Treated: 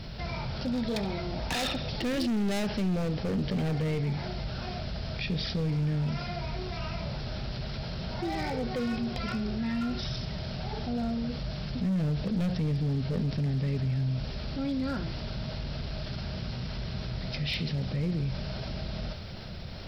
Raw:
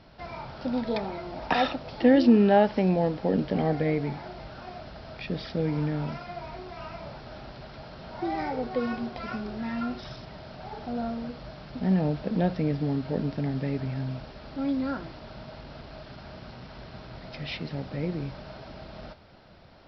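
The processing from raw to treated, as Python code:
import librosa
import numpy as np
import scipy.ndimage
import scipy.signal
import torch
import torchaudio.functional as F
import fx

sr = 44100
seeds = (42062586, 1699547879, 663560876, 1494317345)

p1 = fx.peak_eq(x, sr, hz=290.0, db=-7.5, octaves=0.45)
p2 = p1 + fx.echo_thinned(p1, sr, ms=70, feedback_pct=58, hz=1100.0, wet_db=-13.0, dry=0)
p3 = np.clip(10.0 ** (26.5 / 20.0) * p2, -1.0, 1.0) / 10.0 ** (26.5 / 20.0)
p4 = fx.peak_eq(p3, sr, hz=940.0, db=-13.5, octaves=2.7)
p5 = fx.env_flatten(p4, sr, amount_pct=50)
y = p5 * librosa.db_to_amplitude(4.0)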